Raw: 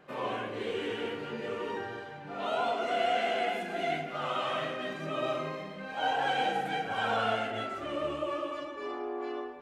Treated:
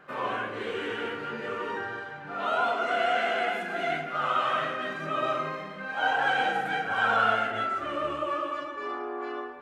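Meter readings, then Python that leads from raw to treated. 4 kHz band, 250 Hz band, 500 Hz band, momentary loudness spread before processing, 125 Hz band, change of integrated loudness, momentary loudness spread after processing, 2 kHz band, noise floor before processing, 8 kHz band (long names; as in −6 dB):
+1.5 dB, 0.0 dB, +1.0 dB, 9 LU, 0.0 dB, +4.5 dB, 10 LU, +7.5 dB, −43 dBFS, can't be measured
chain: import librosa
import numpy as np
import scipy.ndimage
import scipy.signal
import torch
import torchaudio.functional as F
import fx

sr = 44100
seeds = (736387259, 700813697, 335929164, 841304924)

y = fx.peak_eq(x, sr, hz=1400.0, db=10.0, octaves=0.91)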